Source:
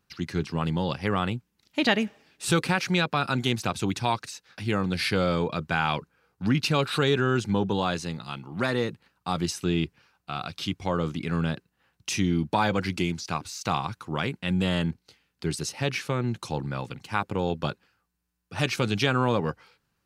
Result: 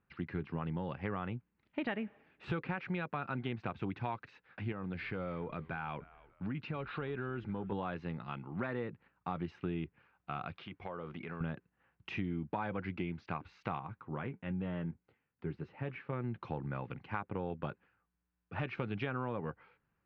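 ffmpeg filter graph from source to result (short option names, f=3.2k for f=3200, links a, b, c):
-filter_complex "[0:a]asettb=1/sr,asplit=3[a][b][c];[a]atrim=end=4.724[d];[b]atrim=start=4.72:end=7.72,asetpts=PTS-STARTPTS,afade=t=in:d=0.004:c=qsin,afade=t=out:st=2.996:d=0.004:c=qsin,acompressor=threshold=-34dB:ratio=2:attack=3.2:release=140:knee=1:detection=peak,asplit=3[e][f][g];[f]adelay=296,afreqshift=-99,volume=-22dB[h];[g]adelay=592,afreqshift=-198,volume=-31.4dB[i];[e][h][i]amix=inputs=3:normalize=0,atrim=end_sample=132300,asoftclip=type=hard:threshold=-22.5dB[j];[c]atrim=start=7.716[k];[d][j]acrossfade=d=0.004:c1=hsin:c2=qsin[l];[l][k]acrossfade=d=0.004:c1=qsin:c2=hsin,asettb=1/sr,asplit=3[m][n][o];[m]atrim=end=10.564[p];[n]atrim=start=10.56:end=11.41,asetpts=PTS-STARTPTS,afade=t=in:d=0.004:c=qsin,afade=t=out:st=0.846:d=0.004:c=qsin,bass=f=250:g=-9,treble=f=4k:g=1,bandreject=f=290:w=5.6,acompressor=threshold=-33dB:ratio=6:attack=3.2:release=140:knee=1:detection=peak[q];[o]atrim=start=11.406[r];[p][q]acrossfade=d=0.004:c1=hsin:c2=qsin[s];[s][r]acrossfade=d=0.004:c1=qsin:c2=hsin,asettb=1/sr,asplit=3[t][u][v];[t]atrim=end=13.794[w];[u]atrim=start=13.79:end=16.13,asetpts=PTS-STARTPTS,afade=t=in:d=0.004:c=qsin,afade=t=out:st=2.336:d=0.004:c=qsin,lowpass=f=1.8k:p=1,flanger=delay=6.4:depth=1.8:regen=-58:speed=1:shape=sinusoidal[x];[v]atrim=start=16.126[y];[w][x]acrossfade=d=0.004:c1=hsin:c2=qsin[z];[z][y]acrossfade=d=0.004:c1=qsin:c2=hsin,lowpass=f=2.4k:w=0.5412,lowpass=f=2.4k:w=1.3066,acompressor=threshold=-30dB:ratio=4,volume=-4.5dB"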